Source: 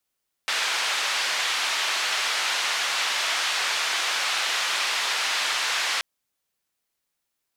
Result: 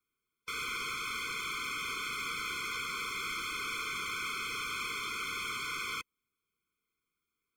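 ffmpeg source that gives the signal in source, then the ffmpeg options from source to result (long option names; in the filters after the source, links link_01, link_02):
-f lavfi -i "anoisesrc=color=white:duration=5.53:sample_rate=44100:seed=1,highpass=frequency=920,lowpass=frequency=4000,volume=-12.5dB"
-filter_complex "[0:a]highshelf=frequency=3400:width_type=q:width=1.5:gain=-7.5,acrossover=split=300[link_01][link_02];[link_02]asoftclip=type=tanh:threshold=-32.5dB[link_03];[link_01][link_03]amix=inputs=2:normalize=0,afftfilt=real='re*eq(mod(floor(b*sr/1024/510),2),0)':imag='im*eq(mod(floor(b*sr/1024/510),2),0)':win_size=1024:overlap=0.75"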